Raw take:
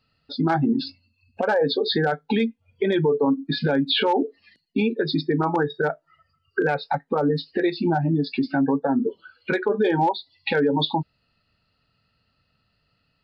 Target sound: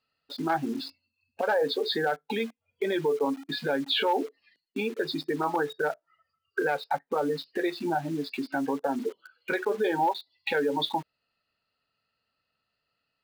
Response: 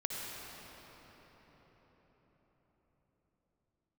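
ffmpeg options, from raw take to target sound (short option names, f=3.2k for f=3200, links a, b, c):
-filter_complex "[0:a]asplit=2[a][b];[b]acrusher=bits=5:mix=0:aa=0.000001,volume=-3.5dB[c];[a][c]amix=inputs=2:normalize=0,bass=f=250:g=-14,treble=f=4k:g=-3,volume=-8dB"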